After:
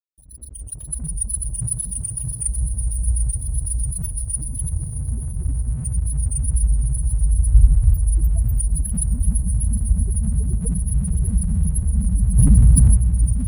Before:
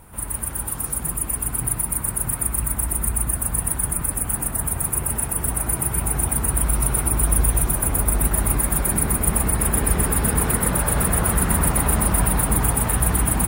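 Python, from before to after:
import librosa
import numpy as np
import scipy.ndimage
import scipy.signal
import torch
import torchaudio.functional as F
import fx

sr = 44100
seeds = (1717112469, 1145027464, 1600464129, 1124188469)

p1 = fx.fade_in_head(x, sr, length_s=1.15)
p2 = fx.steep_lowpass(p1, sr, hz=610.0, slope=36, at=(4.69, 5.85))
p3 = fx.low_shelf(p2, sr, hz=240.0, db=8.5, at=(7.52, 7.94))
p4 = fx.rider(p3, sr, range_db=4, speed_s=0.5)
p5 = p3 + (p4 * 10.0 ** (-2.0 / 20.0))
p6 = fx.wow_flutter(p5, sr, seeds[0], rate_hz=2.1, depth_cents=55.0)
p7 = fx.spec_topn(p6, sr, count=4)
p8 = fx.echo_diffused(p7, sr, ms=519, feedback_pct=61, wet_db=-14.0)
p9 = np.sign(p8) * np.maximum(np.abs(p8) - 10.0 ** (-43.0 / 20.0), 0.0)
p10 = p9 + fx.echo_feedback(p9, sr, ms=626, feedback_pct=58, wet_db=-13.5, dry=0)
y = fx.env_flatten(p10, sr, amount_pct=70, at=(12.36, 12.95), fade=0.02)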